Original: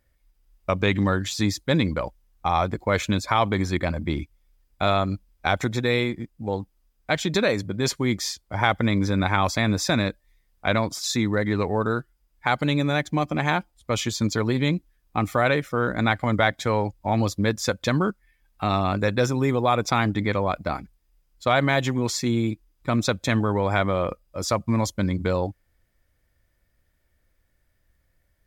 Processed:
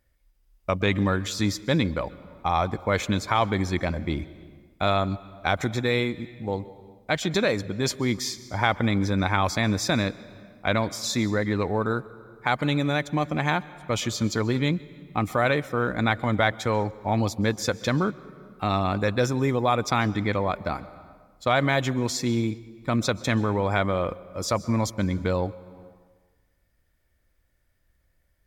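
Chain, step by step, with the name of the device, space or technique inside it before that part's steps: compressed reverb return (on a send at -12.5 dB: reverb RT60 1.3 s, pre-delay 0.12 s + compressor, threshold -26 dBFS, peak gain reduction 9.5 dB); on the sum: gain -1.5 dB

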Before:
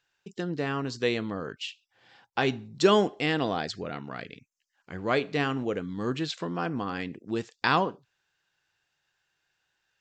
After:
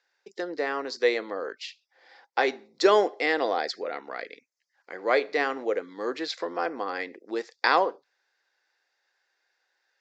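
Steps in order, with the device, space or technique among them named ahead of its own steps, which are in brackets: phone speaker on a table (speaker cabinet 340–6600 Hz, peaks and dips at 520 Hz +6 dB, 780 Hz +3 dB, 2000 Hz +7 dB, 2900 Hz -9 dB, 4800 Hz +5 dB); gain +1 dB

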